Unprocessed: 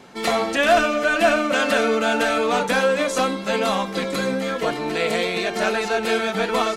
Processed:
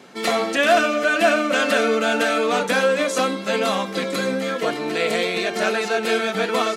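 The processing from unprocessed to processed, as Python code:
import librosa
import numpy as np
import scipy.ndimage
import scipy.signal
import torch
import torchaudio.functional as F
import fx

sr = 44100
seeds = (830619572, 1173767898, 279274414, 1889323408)

y = scipy.signal.sosfilt(scipy.signal.butter(2, 170.0, 'highpass', fs=sr, output='sos'), x)
y = fx.peak_eq(y, sr, hz=890.0, db=-4.5, octaves=0.42)
y = y * librosa.db_to_amplitude(1.0)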